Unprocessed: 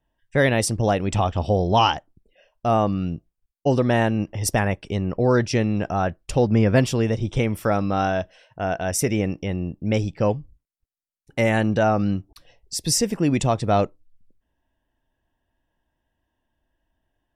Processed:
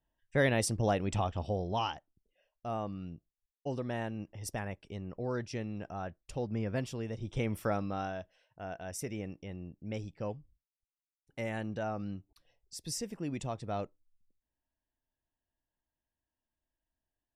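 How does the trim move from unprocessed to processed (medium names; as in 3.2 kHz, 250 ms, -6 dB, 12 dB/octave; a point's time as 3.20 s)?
1.01 s -9 dB
1.96 s -17 dB
7.09 s -17 dB
7.56 s -9 dB
8.19 s -17 dB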